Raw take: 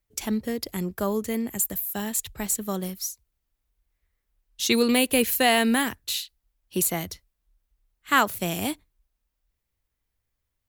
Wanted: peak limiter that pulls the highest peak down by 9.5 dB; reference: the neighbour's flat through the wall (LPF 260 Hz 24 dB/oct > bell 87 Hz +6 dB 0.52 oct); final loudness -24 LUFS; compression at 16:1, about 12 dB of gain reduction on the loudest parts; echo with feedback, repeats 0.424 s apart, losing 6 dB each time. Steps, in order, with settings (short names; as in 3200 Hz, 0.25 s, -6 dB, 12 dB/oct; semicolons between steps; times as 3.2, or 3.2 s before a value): compressor 16:1, threshold -27 dBFS; limiter -23 dBFS; LPF 260 Hz 24 dB/oct; bell 87 Hz +6 dB 0.52 oct; feedback echo 0.424 s, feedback 50%, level -6 dB; gain +16 dB